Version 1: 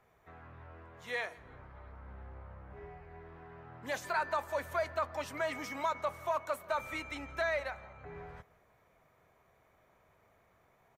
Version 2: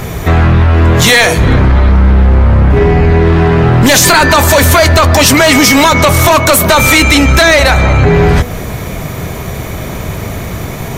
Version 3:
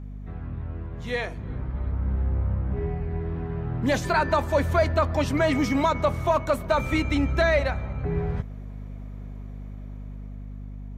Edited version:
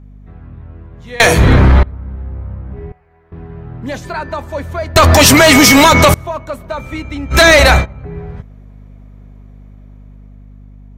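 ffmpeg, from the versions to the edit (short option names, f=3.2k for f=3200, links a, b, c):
-filter_complex "[1:a]asplit=3[a][b][c];[2:a]asplit=5[d][e][f][g][h];[d]atrim=end=1.202[i];[a]atrim=start=1.198:end=1.832[j];[e]atrim=start=1.828:end=2.922[k];[0:a]atrim=start=2.918:end=3.322[l];[f]atrim=start=3.318:end=4.962[m];[b]atrim=start=4.958:end=6.142[n];[g]atrim=start=6.138:end=7.4[o];[c]atrim=start=7.3:end=7.86[p];[h]atrim=start=7.76[q];[i][j]acrossfade=d=0.004:c1=hsin:c2=hsin[r];[r][k]acrossfade=d=0.004:c1=hsin:c2=hsin[s];[s][l]acrossfade=d=0.004:c1=hsin:c2=hsin[t];[t][m]acrossfade=d=0.004:c1=hsin:c2=hsin[u];[u][n]acrossfade=d=0.004:c1=hsin:c2=hsin[v];[v][o]acrossfade=d=0.004:c1=hsin:c2=hsin[w];[w][p]acrossfade=d=0.1:c1=tri:c2=tri[x];[x][q]acrossfade=d=0.1:c1=tri:c2=tri"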